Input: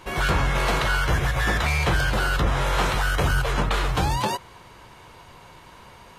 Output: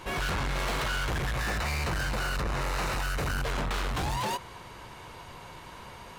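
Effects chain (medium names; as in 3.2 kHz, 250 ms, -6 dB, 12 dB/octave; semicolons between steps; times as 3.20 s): saturation -29.5 dBFS, distortion -7 dB; 1.38–3.43 s: band-stop 3.3 kHz, Q 6.7; trim +1.5 dB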